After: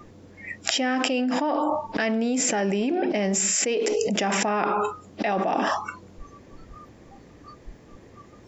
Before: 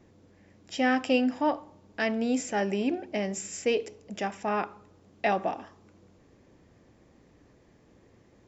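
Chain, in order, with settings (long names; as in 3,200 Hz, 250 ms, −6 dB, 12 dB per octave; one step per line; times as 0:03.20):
noise reduction from a noise print of the clip's start 27 dB
envelope flattener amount 100%
level −3 dB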